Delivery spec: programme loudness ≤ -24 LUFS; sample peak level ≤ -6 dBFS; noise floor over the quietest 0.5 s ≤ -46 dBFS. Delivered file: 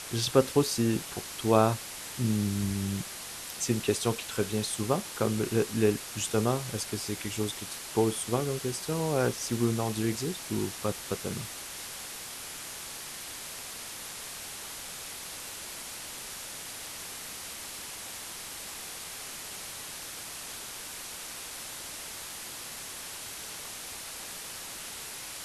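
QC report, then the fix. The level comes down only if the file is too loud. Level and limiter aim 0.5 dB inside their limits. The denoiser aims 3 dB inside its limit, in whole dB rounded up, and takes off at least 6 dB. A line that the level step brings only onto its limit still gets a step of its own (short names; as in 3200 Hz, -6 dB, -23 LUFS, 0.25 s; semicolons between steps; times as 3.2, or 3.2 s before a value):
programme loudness -32.5 LUFS: OK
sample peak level -7.5 dBFS: OK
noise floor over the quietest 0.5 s -41 dBFS: fail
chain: denoiser 8 dB, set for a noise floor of -41 dBFS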